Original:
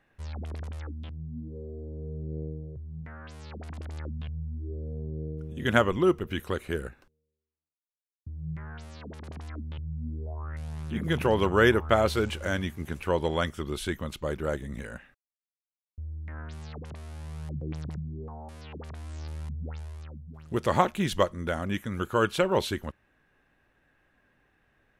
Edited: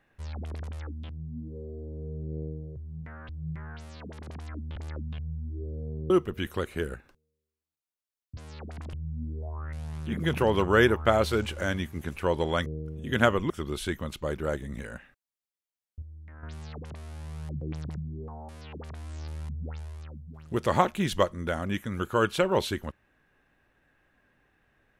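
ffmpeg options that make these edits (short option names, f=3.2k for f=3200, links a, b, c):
-filter_complex "[0:a]asplit=10[a][b][c][d][e][f][g][h][i][j];[a]atrim=end=3.292[k];[b]atrim=start=8.298:end=9.772[l];[c]atrim=start=3.848:end=5.192[m];[d]atrim=start=6.028:end=8.302[n];[e]atrim=start=3.288:end=3.852[o];[f]atrim=start=9.768:end=13.502[p];[g]atrim=start=5.188:end=6.032[q];[h]atrim=start=13.498:end=16.022[r];[i]atrim=start=16.018:end=16.432,asetpts=PTS-STARTPTS,volume=-8dB[s];[j]atrim=start=16.428[t];[k][l]acrossfade=d=0.004:c1=hsin:c2=hsin[u];[u][m]acrossfade=d=0.004:c1=hsin:c2=hsin[v];[v][n]acrossfade=d=0.004:c1=hsin:c2=hsin[w];[w][o]acrossfade=d=0.004:c1=hsin:c2=hsin[x];[x][p]acrossfade=d=0.004:c1=hsin:c2=hsin[y];[y][q]acrossfade=d=0.004:c1=hsin:c2=hsin[z];[z][r]acrossfade=d=0.004:c1=hsin:c2=hsin[aa];[aa][s]acrossfade=d=0.004:c1=hsin:c2=hsin[ab];[ab][t]acrossfade=d=0.004:c1=hsin:c2=hsin"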